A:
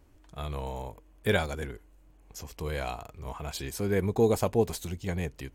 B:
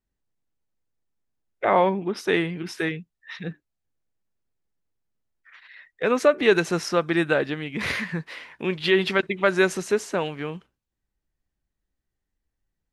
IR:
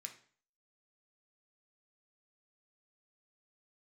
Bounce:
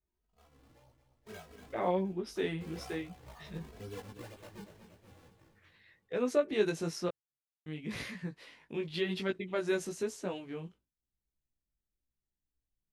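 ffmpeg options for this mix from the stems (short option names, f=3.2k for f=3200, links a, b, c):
-filter_complex "[0:a]acrusher=samples=39:mix=1:aa=0.000001:lfo=1:lforange=62.4:lforate=2,asplit=2[a][b];[b]adelay=2.8,afreqshift=0.88[c];[a][c]amix=inputs=2:normalize=1,volume=-9dB,afade=t=in:st=1.2:d=0.72:silence=0.251189,afade=t=out:st=3.81:d=0.38:silence=0.316228,asplit=2[d][e];[e]volume=-10dB[f];[1:a]equalizer=f=1.5k:t=o:w=2.4:g=-9,adelay=100,volume=-5.5dB,asplit=3[g][h][i];[g]atrim=end=7.09,asetpts=PTS-STARTPTS,afade=t=out:st=7.086:d=0.004:c=hsin[j];[h]atrim=start=7.09:end=7.66,asetpts=PTS-STARTPTS,volume=0[k];[i]atrim=start=7.66,asetpts=PTS-STARTPTS,afade=t=in:d=0.004:c=hsin[l];[j][k][l]concat=n=3:v=0:a=1[m];[f]aecho=0:1:237|474|711|948|1185|1422|1659|1896:1|0.56|0.314|0.176|0.0983|0.0551|0.0308|0.0173[n];[d][m][n]amix=inputs=3:normalize=0,flanger=delay=16:depth=3.3:speed=0.97"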